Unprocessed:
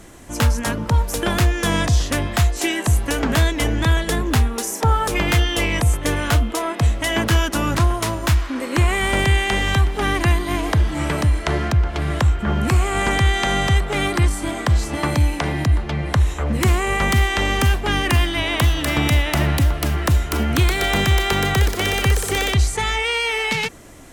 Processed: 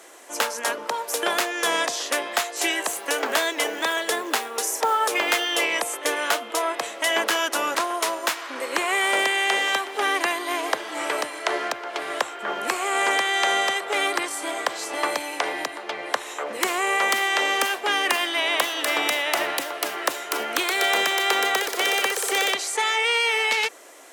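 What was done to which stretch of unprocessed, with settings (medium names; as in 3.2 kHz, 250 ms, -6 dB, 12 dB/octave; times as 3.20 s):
2.80–5.65 s: short-mantissa float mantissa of 4-bit
whole clip: high-pass 420 Hz 24 dB/octave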